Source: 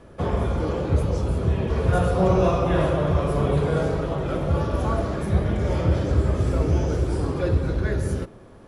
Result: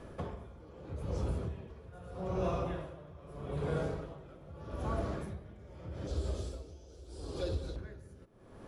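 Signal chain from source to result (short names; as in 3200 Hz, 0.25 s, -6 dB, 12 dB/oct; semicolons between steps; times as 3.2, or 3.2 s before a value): 6.07–7.76 graphic EQ 125/250/1000/2000/4000/8000 Hz -12/-5/-6/-11/+9/+4 dB; compressor 2.5:1, threshold -33 dBFS, peak gain reduction 12.5 dB; dB-linear tremolo 0.8 Hz, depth 19 dB; gain -1.5 dB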